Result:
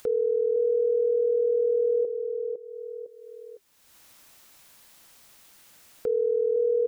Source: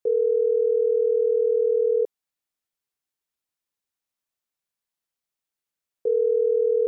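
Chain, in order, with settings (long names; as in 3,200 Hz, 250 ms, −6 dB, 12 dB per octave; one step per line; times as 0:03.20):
notch filter 400 Hz, Q 12
repeating echo 506 ms, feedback 17%, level −7 dB
upward compression, threshold −24 dBFS
level −3 dB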